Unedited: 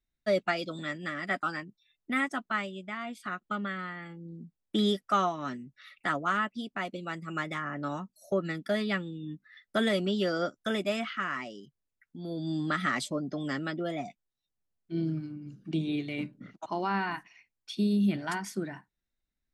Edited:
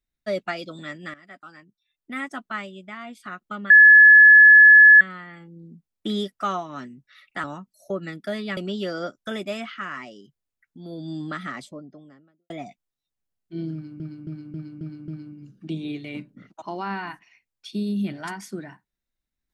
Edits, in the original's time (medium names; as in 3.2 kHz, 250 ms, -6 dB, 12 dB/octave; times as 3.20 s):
1.14–2.37 s: fade in quadratic, from -15 dB
3.70 s: add tone 1.71 kHz -6.5 dBFS 1.31 s
6.13–7.86 s: delete
8.99–9.96 s: delete
12.38–13.89 s: studio fade out
15.12–15.39 s: loop, 6 plays